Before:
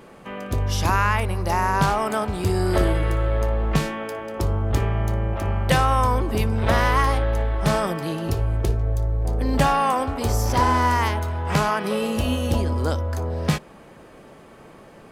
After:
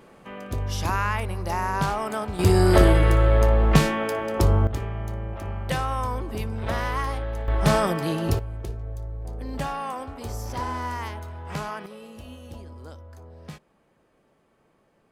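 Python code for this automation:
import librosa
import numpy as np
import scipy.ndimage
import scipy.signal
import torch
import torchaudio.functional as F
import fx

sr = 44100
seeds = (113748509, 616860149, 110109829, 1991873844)

y = fx.gain(x, sr, db=fx.steps((0.0, -5.0), (2.39, 4.0), (4.67, -8.0), (7.48, 1.0), (8.39, -11.0), (11.86, -19.0)))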